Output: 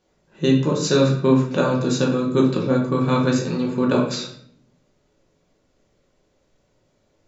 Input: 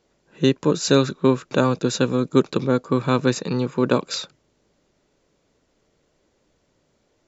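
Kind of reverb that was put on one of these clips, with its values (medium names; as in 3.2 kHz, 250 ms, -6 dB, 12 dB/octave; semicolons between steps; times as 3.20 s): simulated room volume 120 m³, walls mixed, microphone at 1 m; trim -4 dB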